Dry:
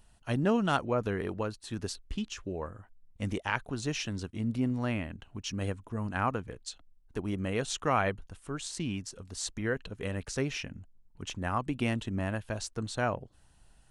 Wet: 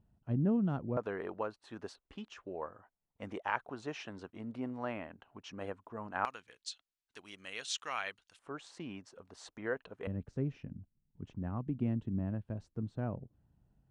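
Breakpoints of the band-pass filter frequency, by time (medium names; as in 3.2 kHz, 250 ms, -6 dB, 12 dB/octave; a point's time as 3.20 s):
band-pass filter, Q 0.95
160 Hz
from 0.97 s 830 Hz
from 6.25 s 3.9 kHz
from 8.39 s 800 Hz
from 10.07 s 160 Hz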